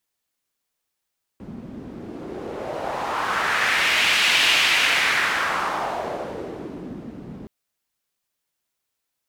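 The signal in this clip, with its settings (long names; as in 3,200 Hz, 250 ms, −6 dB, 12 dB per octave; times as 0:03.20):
wind from filtered noise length 6.07 s, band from 210 Hz, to 2,700 Hz, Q 2.1, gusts 1, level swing 19 dB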